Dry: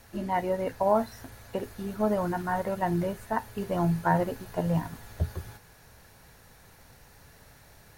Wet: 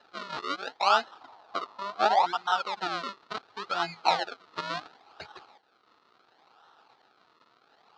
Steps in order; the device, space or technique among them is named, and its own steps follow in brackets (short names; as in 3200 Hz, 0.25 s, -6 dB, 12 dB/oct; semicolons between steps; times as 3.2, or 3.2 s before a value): reverb removal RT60 0.98 s; circuit-bent sampling toy (decimation with a swept rate 38×, swing 100% 0.71 Hz; speaker cabinet 570–5000 Hz, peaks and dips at 570 Hz -7 dB, 810 Hz +7 dB, 1300 Hz +9 dB, 2100 Hz -3 dB, 4100 Hz +8 dB); 1.21–2.26 band shelf 820 Hz +10 dB 1.1 oct